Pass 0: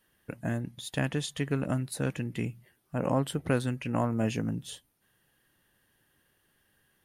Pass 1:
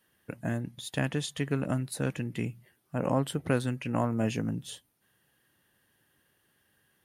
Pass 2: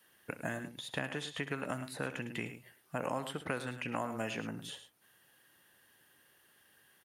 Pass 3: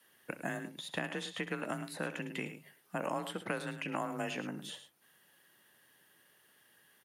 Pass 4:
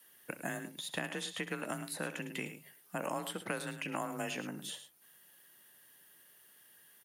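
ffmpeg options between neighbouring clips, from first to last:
-af "highpass=65"
-filter_complex "[0:a]lowshelf=f=270:g=-11.5,aecho=1:1:63|105:0.158|0.211,acrossover=split=700|2800[a][b][c];[a]acompressor=threshold=-44dB:ratio=4[d];[b]acompressor=threshold=-43dB:ratio=4[e];[c]acompressor=threshold=-57dB:ratio=4[f];[d][e][f]amix=inputs=3:normalize=0,volume=5dB"
-af "afreqshift=30"
-af "crystalizer=i=1.5:c=0,volume=-1.5dB"

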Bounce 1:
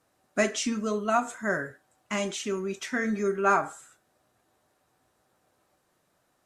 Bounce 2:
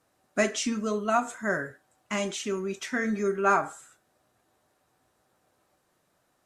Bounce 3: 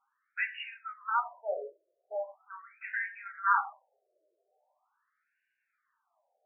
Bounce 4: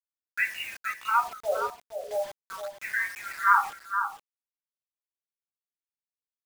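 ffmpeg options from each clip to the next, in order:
-af anull
-af "flanger=delay=7.3:depth=9.5:regen=39:speed=0.51:shape=sinusoidal,afftfilt=real='re*between(b*sr/1024,470*pow(2100/470,0.5+0.5*sin(2*PI*0.41*pts/sr))/1.41,470*pow(2100/470,0.5+0.5*sin(2*PI*0.41*pts/sr))*1.41)':imag='im*between(b*sr/1024,470*pow(2100/470,0.5+0.5*sin(2*PI*0.41*pts/sr))/1.41,470*pow(2100/470,0.5+0.5*sin(2*PI*0.41*pts/sr))*1.41)':win_size=1024:overlap=0.75,volume=2.5dB"
-af "acrusher=bits=7:mix=0:aa=0.000001,aecho=1:1:468:0.398,volume=5.5dB"

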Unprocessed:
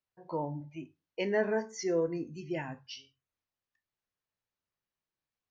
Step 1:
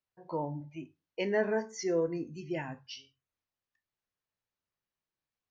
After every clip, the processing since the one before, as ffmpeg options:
-af anull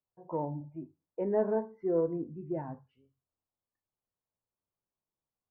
-af "lowpass=f=1.1k:w=0.5412,lowpass=f=1.1k:w=1.3066,aeval=exprs='0.119*(cos(1*acos(clip(val(0)/0.119,-1,1)))-cos(1*PI/2))+0.00376*(cos(3*acos(clip(val(0)/0.119,-1,1)))-cos(3*PI/2))':c=same,volume=1.5dB"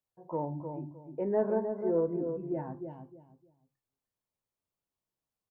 -filter_complex "[0:a]asplit=2[a][b];[b]adelay=307,lowpass=f=1k:p=1,volume=-6dB,asplit=2[c][d];[d]adelay=307,lowpass=f=1k:p=1,volume=0.26,asplit=2[e][f];[f]adelay=307,lowpass=f=1k:p=1,volume=0.26[g];[a][c][e][g]amix=inputs=4:normalize=0"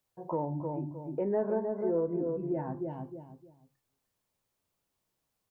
-af "acompressor=threshold=-44dB:ratio=2,volume=9dB"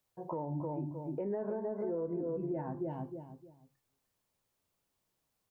-af "alimiter=level_in=4.5dB:limit=-24dB:level=0:latency=1:release=120,volume=-4.5dB"

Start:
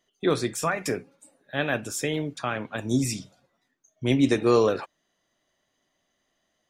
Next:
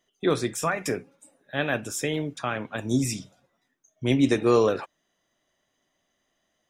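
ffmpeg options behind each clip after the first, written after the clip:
-af "bandreject=f=4.4k:w=8.9"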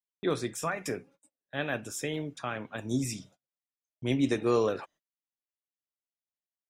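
-af "agate=range=-30dB:threshold=-50dB:ratio=16:detection=peak,volume=-6dB"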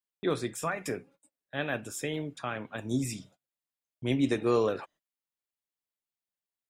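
-af "equalizer=f=5.9k:t=o:w=0.26:g=-6"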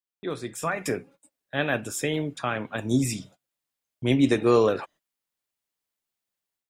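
-af "dynaudnorm=f=410:g=3:m=11dB,volume=-4dB"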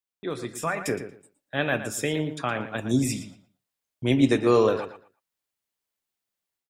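-filter_complex "[0:a]asplit=2[a][b];[b]adelay=116,lowpass=f=4.5k:p=1,volume=-10.5dB,asplit=2[c][d];[d]adelay=116,lowpass=f=4.5k:p=1,volume=0.21,asplit=2[e][f];[f]adelay=116,lowpass=f=4.5k:p=1,volume=0.21[g];[a][c][e][g]amix=inputs=4:normalize=0"

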